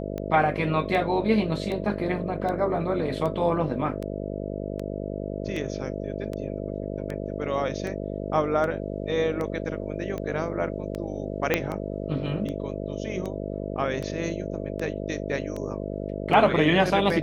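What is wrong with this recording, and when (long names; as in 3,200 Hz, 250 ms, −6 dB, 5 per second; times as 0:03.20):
mains buzz 50 Hz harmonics 13 −32 dBFS
scratch tick 78 rpm −20 dBFS
0:11.54: click −7 dBFS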